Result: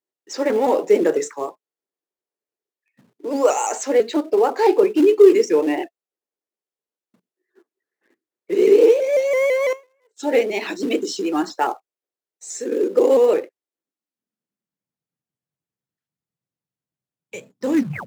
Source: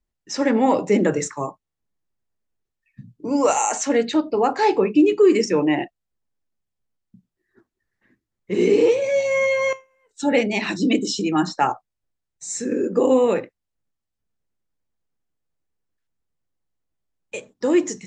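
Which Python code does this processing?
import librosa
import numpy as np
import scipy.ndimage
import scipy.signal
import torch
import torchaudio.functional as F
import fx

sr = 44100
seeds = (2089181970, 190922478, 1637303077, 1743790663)

p1 = fx.tape_stop_end(x, sr, length_s=0.34)
p2 = fx.quant_companded(p1, sr, bits=4)
p3 = p1 + (p2 * 10.0 ** (-8.5 / 20.0))
p4 = fx.filter_sweep_highpass(p3, sr, from_hz=400.0, to_hz=140.0, start_s=13.51, end_s=15.05, q=2.5)
p5 = fx.vibrato_shape(p4, sr, shape='saw_up', rate_hz=6.0, depth_cents=100.0)
y = p5 * 10.0 ** (-6.0 / 20.0)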